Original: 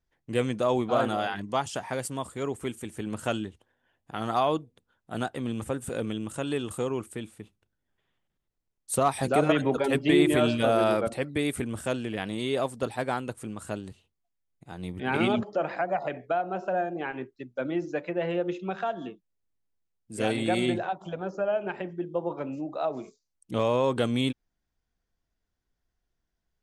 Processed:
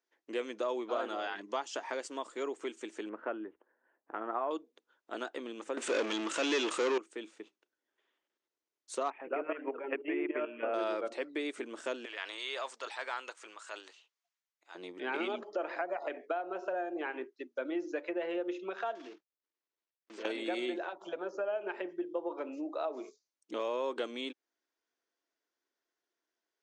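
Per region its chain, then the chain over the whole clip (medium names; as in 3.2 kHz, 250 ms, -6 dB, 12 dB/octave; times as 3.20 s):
3.09–4.51 s: low-pass 1.8 kHz 24 dB/octave + peaking EQ 63 Hz +5.5 dB 1.6 oct
5.77–6.98 s: peaking EQ 2.4 kHz +8 dB 1.2 oct + waveshaping leveller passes 5
9.10–10.74 s: steep low-pass 2.8 kHz 72 dB/octave + hum notches 60/120/180/240/300/360/420/480 Hz + level held to a coarse grid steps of 12 dB
12.05–14.75 s: high-pass 980 Hz + transient shaper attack -3 dB, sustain +5 dB
18.95–20.25 s: block-companded coder 3-bit + low-pass 4.8 kHz + compression 4:1, threshold -41 dBFS
whole clip: compression 2.5:1, threshold -33 dBFS; elliptic band-pass 320–6600 Hz, stop band 40 dB; band-stop 760 Hz, Q 12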